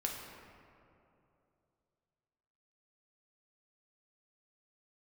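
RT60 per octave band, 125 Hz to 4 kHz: 3.2 s, 2.9 s, 3.0 s, 2.6 s, 2.0 s, 1.3 s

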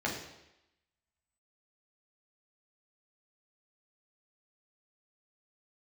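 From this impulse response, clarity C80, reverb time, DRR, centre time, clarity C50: 8.0 dB, 0.90 s, -3.0 dB, 35 ms, 5.5 dB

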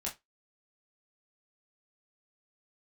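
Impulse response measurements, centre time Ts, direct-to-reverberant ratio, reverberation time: 20 ms, -4.0 dB, 0.20 s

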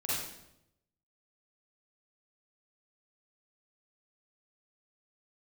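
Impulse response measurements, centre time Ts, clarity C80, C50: 80 ms, 2.0 dB, -4.0 dB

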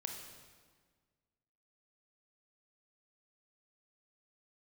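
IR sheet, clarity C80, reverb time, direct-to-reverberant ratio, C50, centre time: 6.0 dB, 1.6 s, 2.5 dB, 4.5 dB, 48 ms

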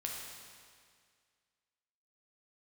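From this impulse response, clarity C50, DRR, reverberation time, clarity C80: 0.5 dB, -2.0 dB, 2.0 s, 2.5 dB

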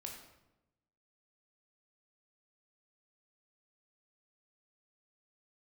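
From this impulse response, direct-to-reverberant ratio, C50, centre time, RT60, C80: 0.5 dB, 4.5 dB, 36 ms, 0.95 s, 7.0 dB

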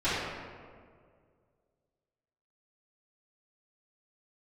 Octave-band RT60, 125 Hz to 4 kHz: 2.4 s, 2.2 s, 2.3 s, 1.8 s, 1.4 s, 1.0 s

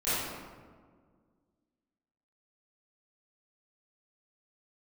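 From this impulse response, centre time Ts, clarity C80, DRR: 118 ms, -1.0 dB, -16.0 dB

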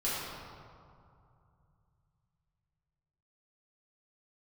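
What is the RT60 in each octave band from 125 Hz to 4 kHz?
4.3 s, 3.1 s, 2.4 s, 2.6 s, 1.7 s, 1.2 s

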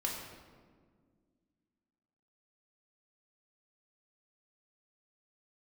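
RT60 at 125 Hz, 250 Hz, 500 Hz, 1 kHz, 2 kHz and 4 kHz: 2.4 s, 2.8 s, 2.0 s, 1.5 s, 1.2 s, 0.95 s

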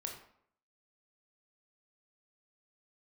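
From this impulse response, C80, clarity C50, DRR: 9.0 dB, 6.0 dB, 1.5 dB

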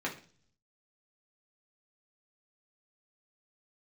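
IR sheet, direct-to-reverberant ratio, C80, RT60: -4.0 dB, 16.0 dB, 0.45 s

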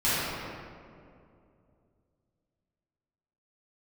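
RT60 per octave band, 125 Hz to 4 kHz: 3.3 s, 3.0 s, 2.8 s, 2.2 s, 1.7 s, 1.2 s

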